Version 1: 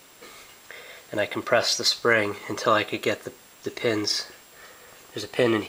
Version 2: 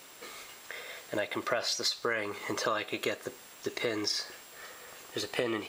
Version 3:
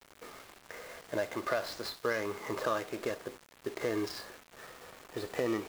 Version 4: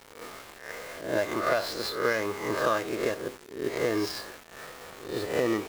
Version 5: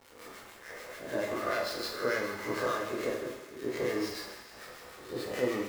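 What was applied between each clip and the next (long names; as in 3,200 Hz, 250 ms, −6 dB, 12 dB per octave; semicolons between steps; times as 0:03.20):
low-shelf EQ 230 Hz −7 dB; downward compressor 4 to 1, threshold −29 dBFS, peak gain reduction 12 dB
running median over 15 samples; harmonic and percussive parts rebalanced harmonic +5 dB; bit-depth reduction 8 bits, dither none; level −2.5 dB
peak hold with a rise ahead of every peak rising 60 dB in 0.53 s; level +4.5 dB
two-band tremolo in antiphase 6.8 Hz, depth 70%, crossover 1,200 Hz; feedback echo with a high-pass in the loop 80 ms, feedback 82%, high-pass 400 Hz, level −12 dB; dense smooth reverb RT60 0.62 s, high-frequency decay 0.75×, DRR 0 dB; level −4.5 dB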